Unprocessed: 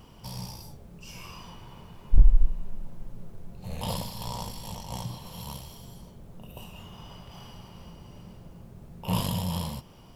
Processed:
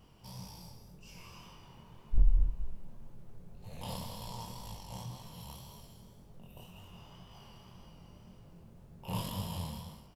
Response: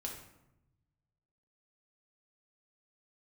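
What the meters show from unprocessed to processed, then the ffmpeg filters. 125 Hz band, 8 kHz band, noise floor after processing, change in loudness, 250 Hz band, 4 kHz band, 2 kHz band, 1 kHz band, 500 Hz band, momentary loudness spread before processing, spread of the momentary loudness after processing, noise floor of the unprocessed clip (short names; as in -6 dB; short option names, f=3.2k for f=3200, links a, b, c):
-8.0 dB, -8.0 dB, -56 dBFS, -8.0 dB, -9.0 dB, -8.0 dB, -8.0 dB, -7.5 dB, -8.0 dB, 19 LU, 19 LU, -50 dBFS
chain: -af "aecho=1:1:192.4|265.3:0.398|0.251,flanger=delay=19:depth=7.8:speed=1.9,volume=-6dB"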